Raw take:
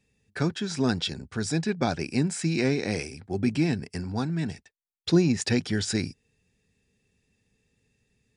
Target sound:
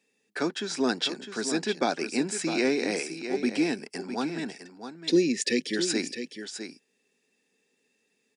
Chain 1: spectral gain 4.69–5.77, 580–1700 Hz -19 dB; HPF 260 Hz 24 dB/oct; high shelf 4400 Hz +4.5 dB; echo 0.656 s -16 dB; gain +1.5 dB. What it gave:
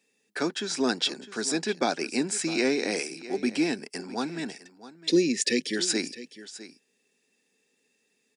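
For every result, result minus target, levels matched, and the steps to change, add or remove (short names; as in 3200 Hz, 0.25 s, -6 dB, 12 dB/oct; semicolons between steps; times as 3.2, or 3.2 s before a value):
echo-to-direct -6.5 dB; 8000 Hz band +2.5 dB
change: echo 0.656 s -9.5 dB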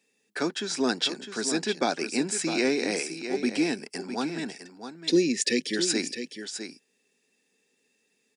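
8000 Hz band +2.5 dB
remove: high shelf 4400 Hz +4.5 dB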